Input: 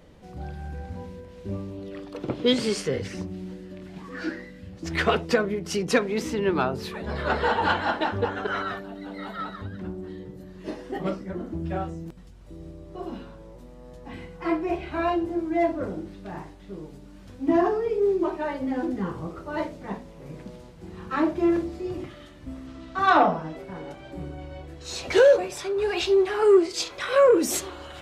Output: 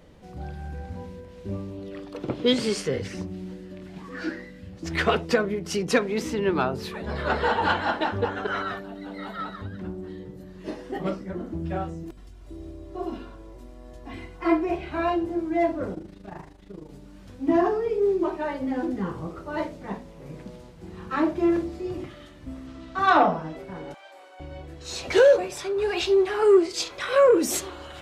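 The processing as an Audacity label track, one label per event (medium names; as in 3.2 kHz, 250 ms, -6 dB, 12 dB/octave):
12.030000	14.650000	comb 2.9 ms, depth 63%
15.940000	16.890000	AM modulator 26 Hz, depth 60%
23.940000	24.400000	high-pass 640 Hz 24 dB/octave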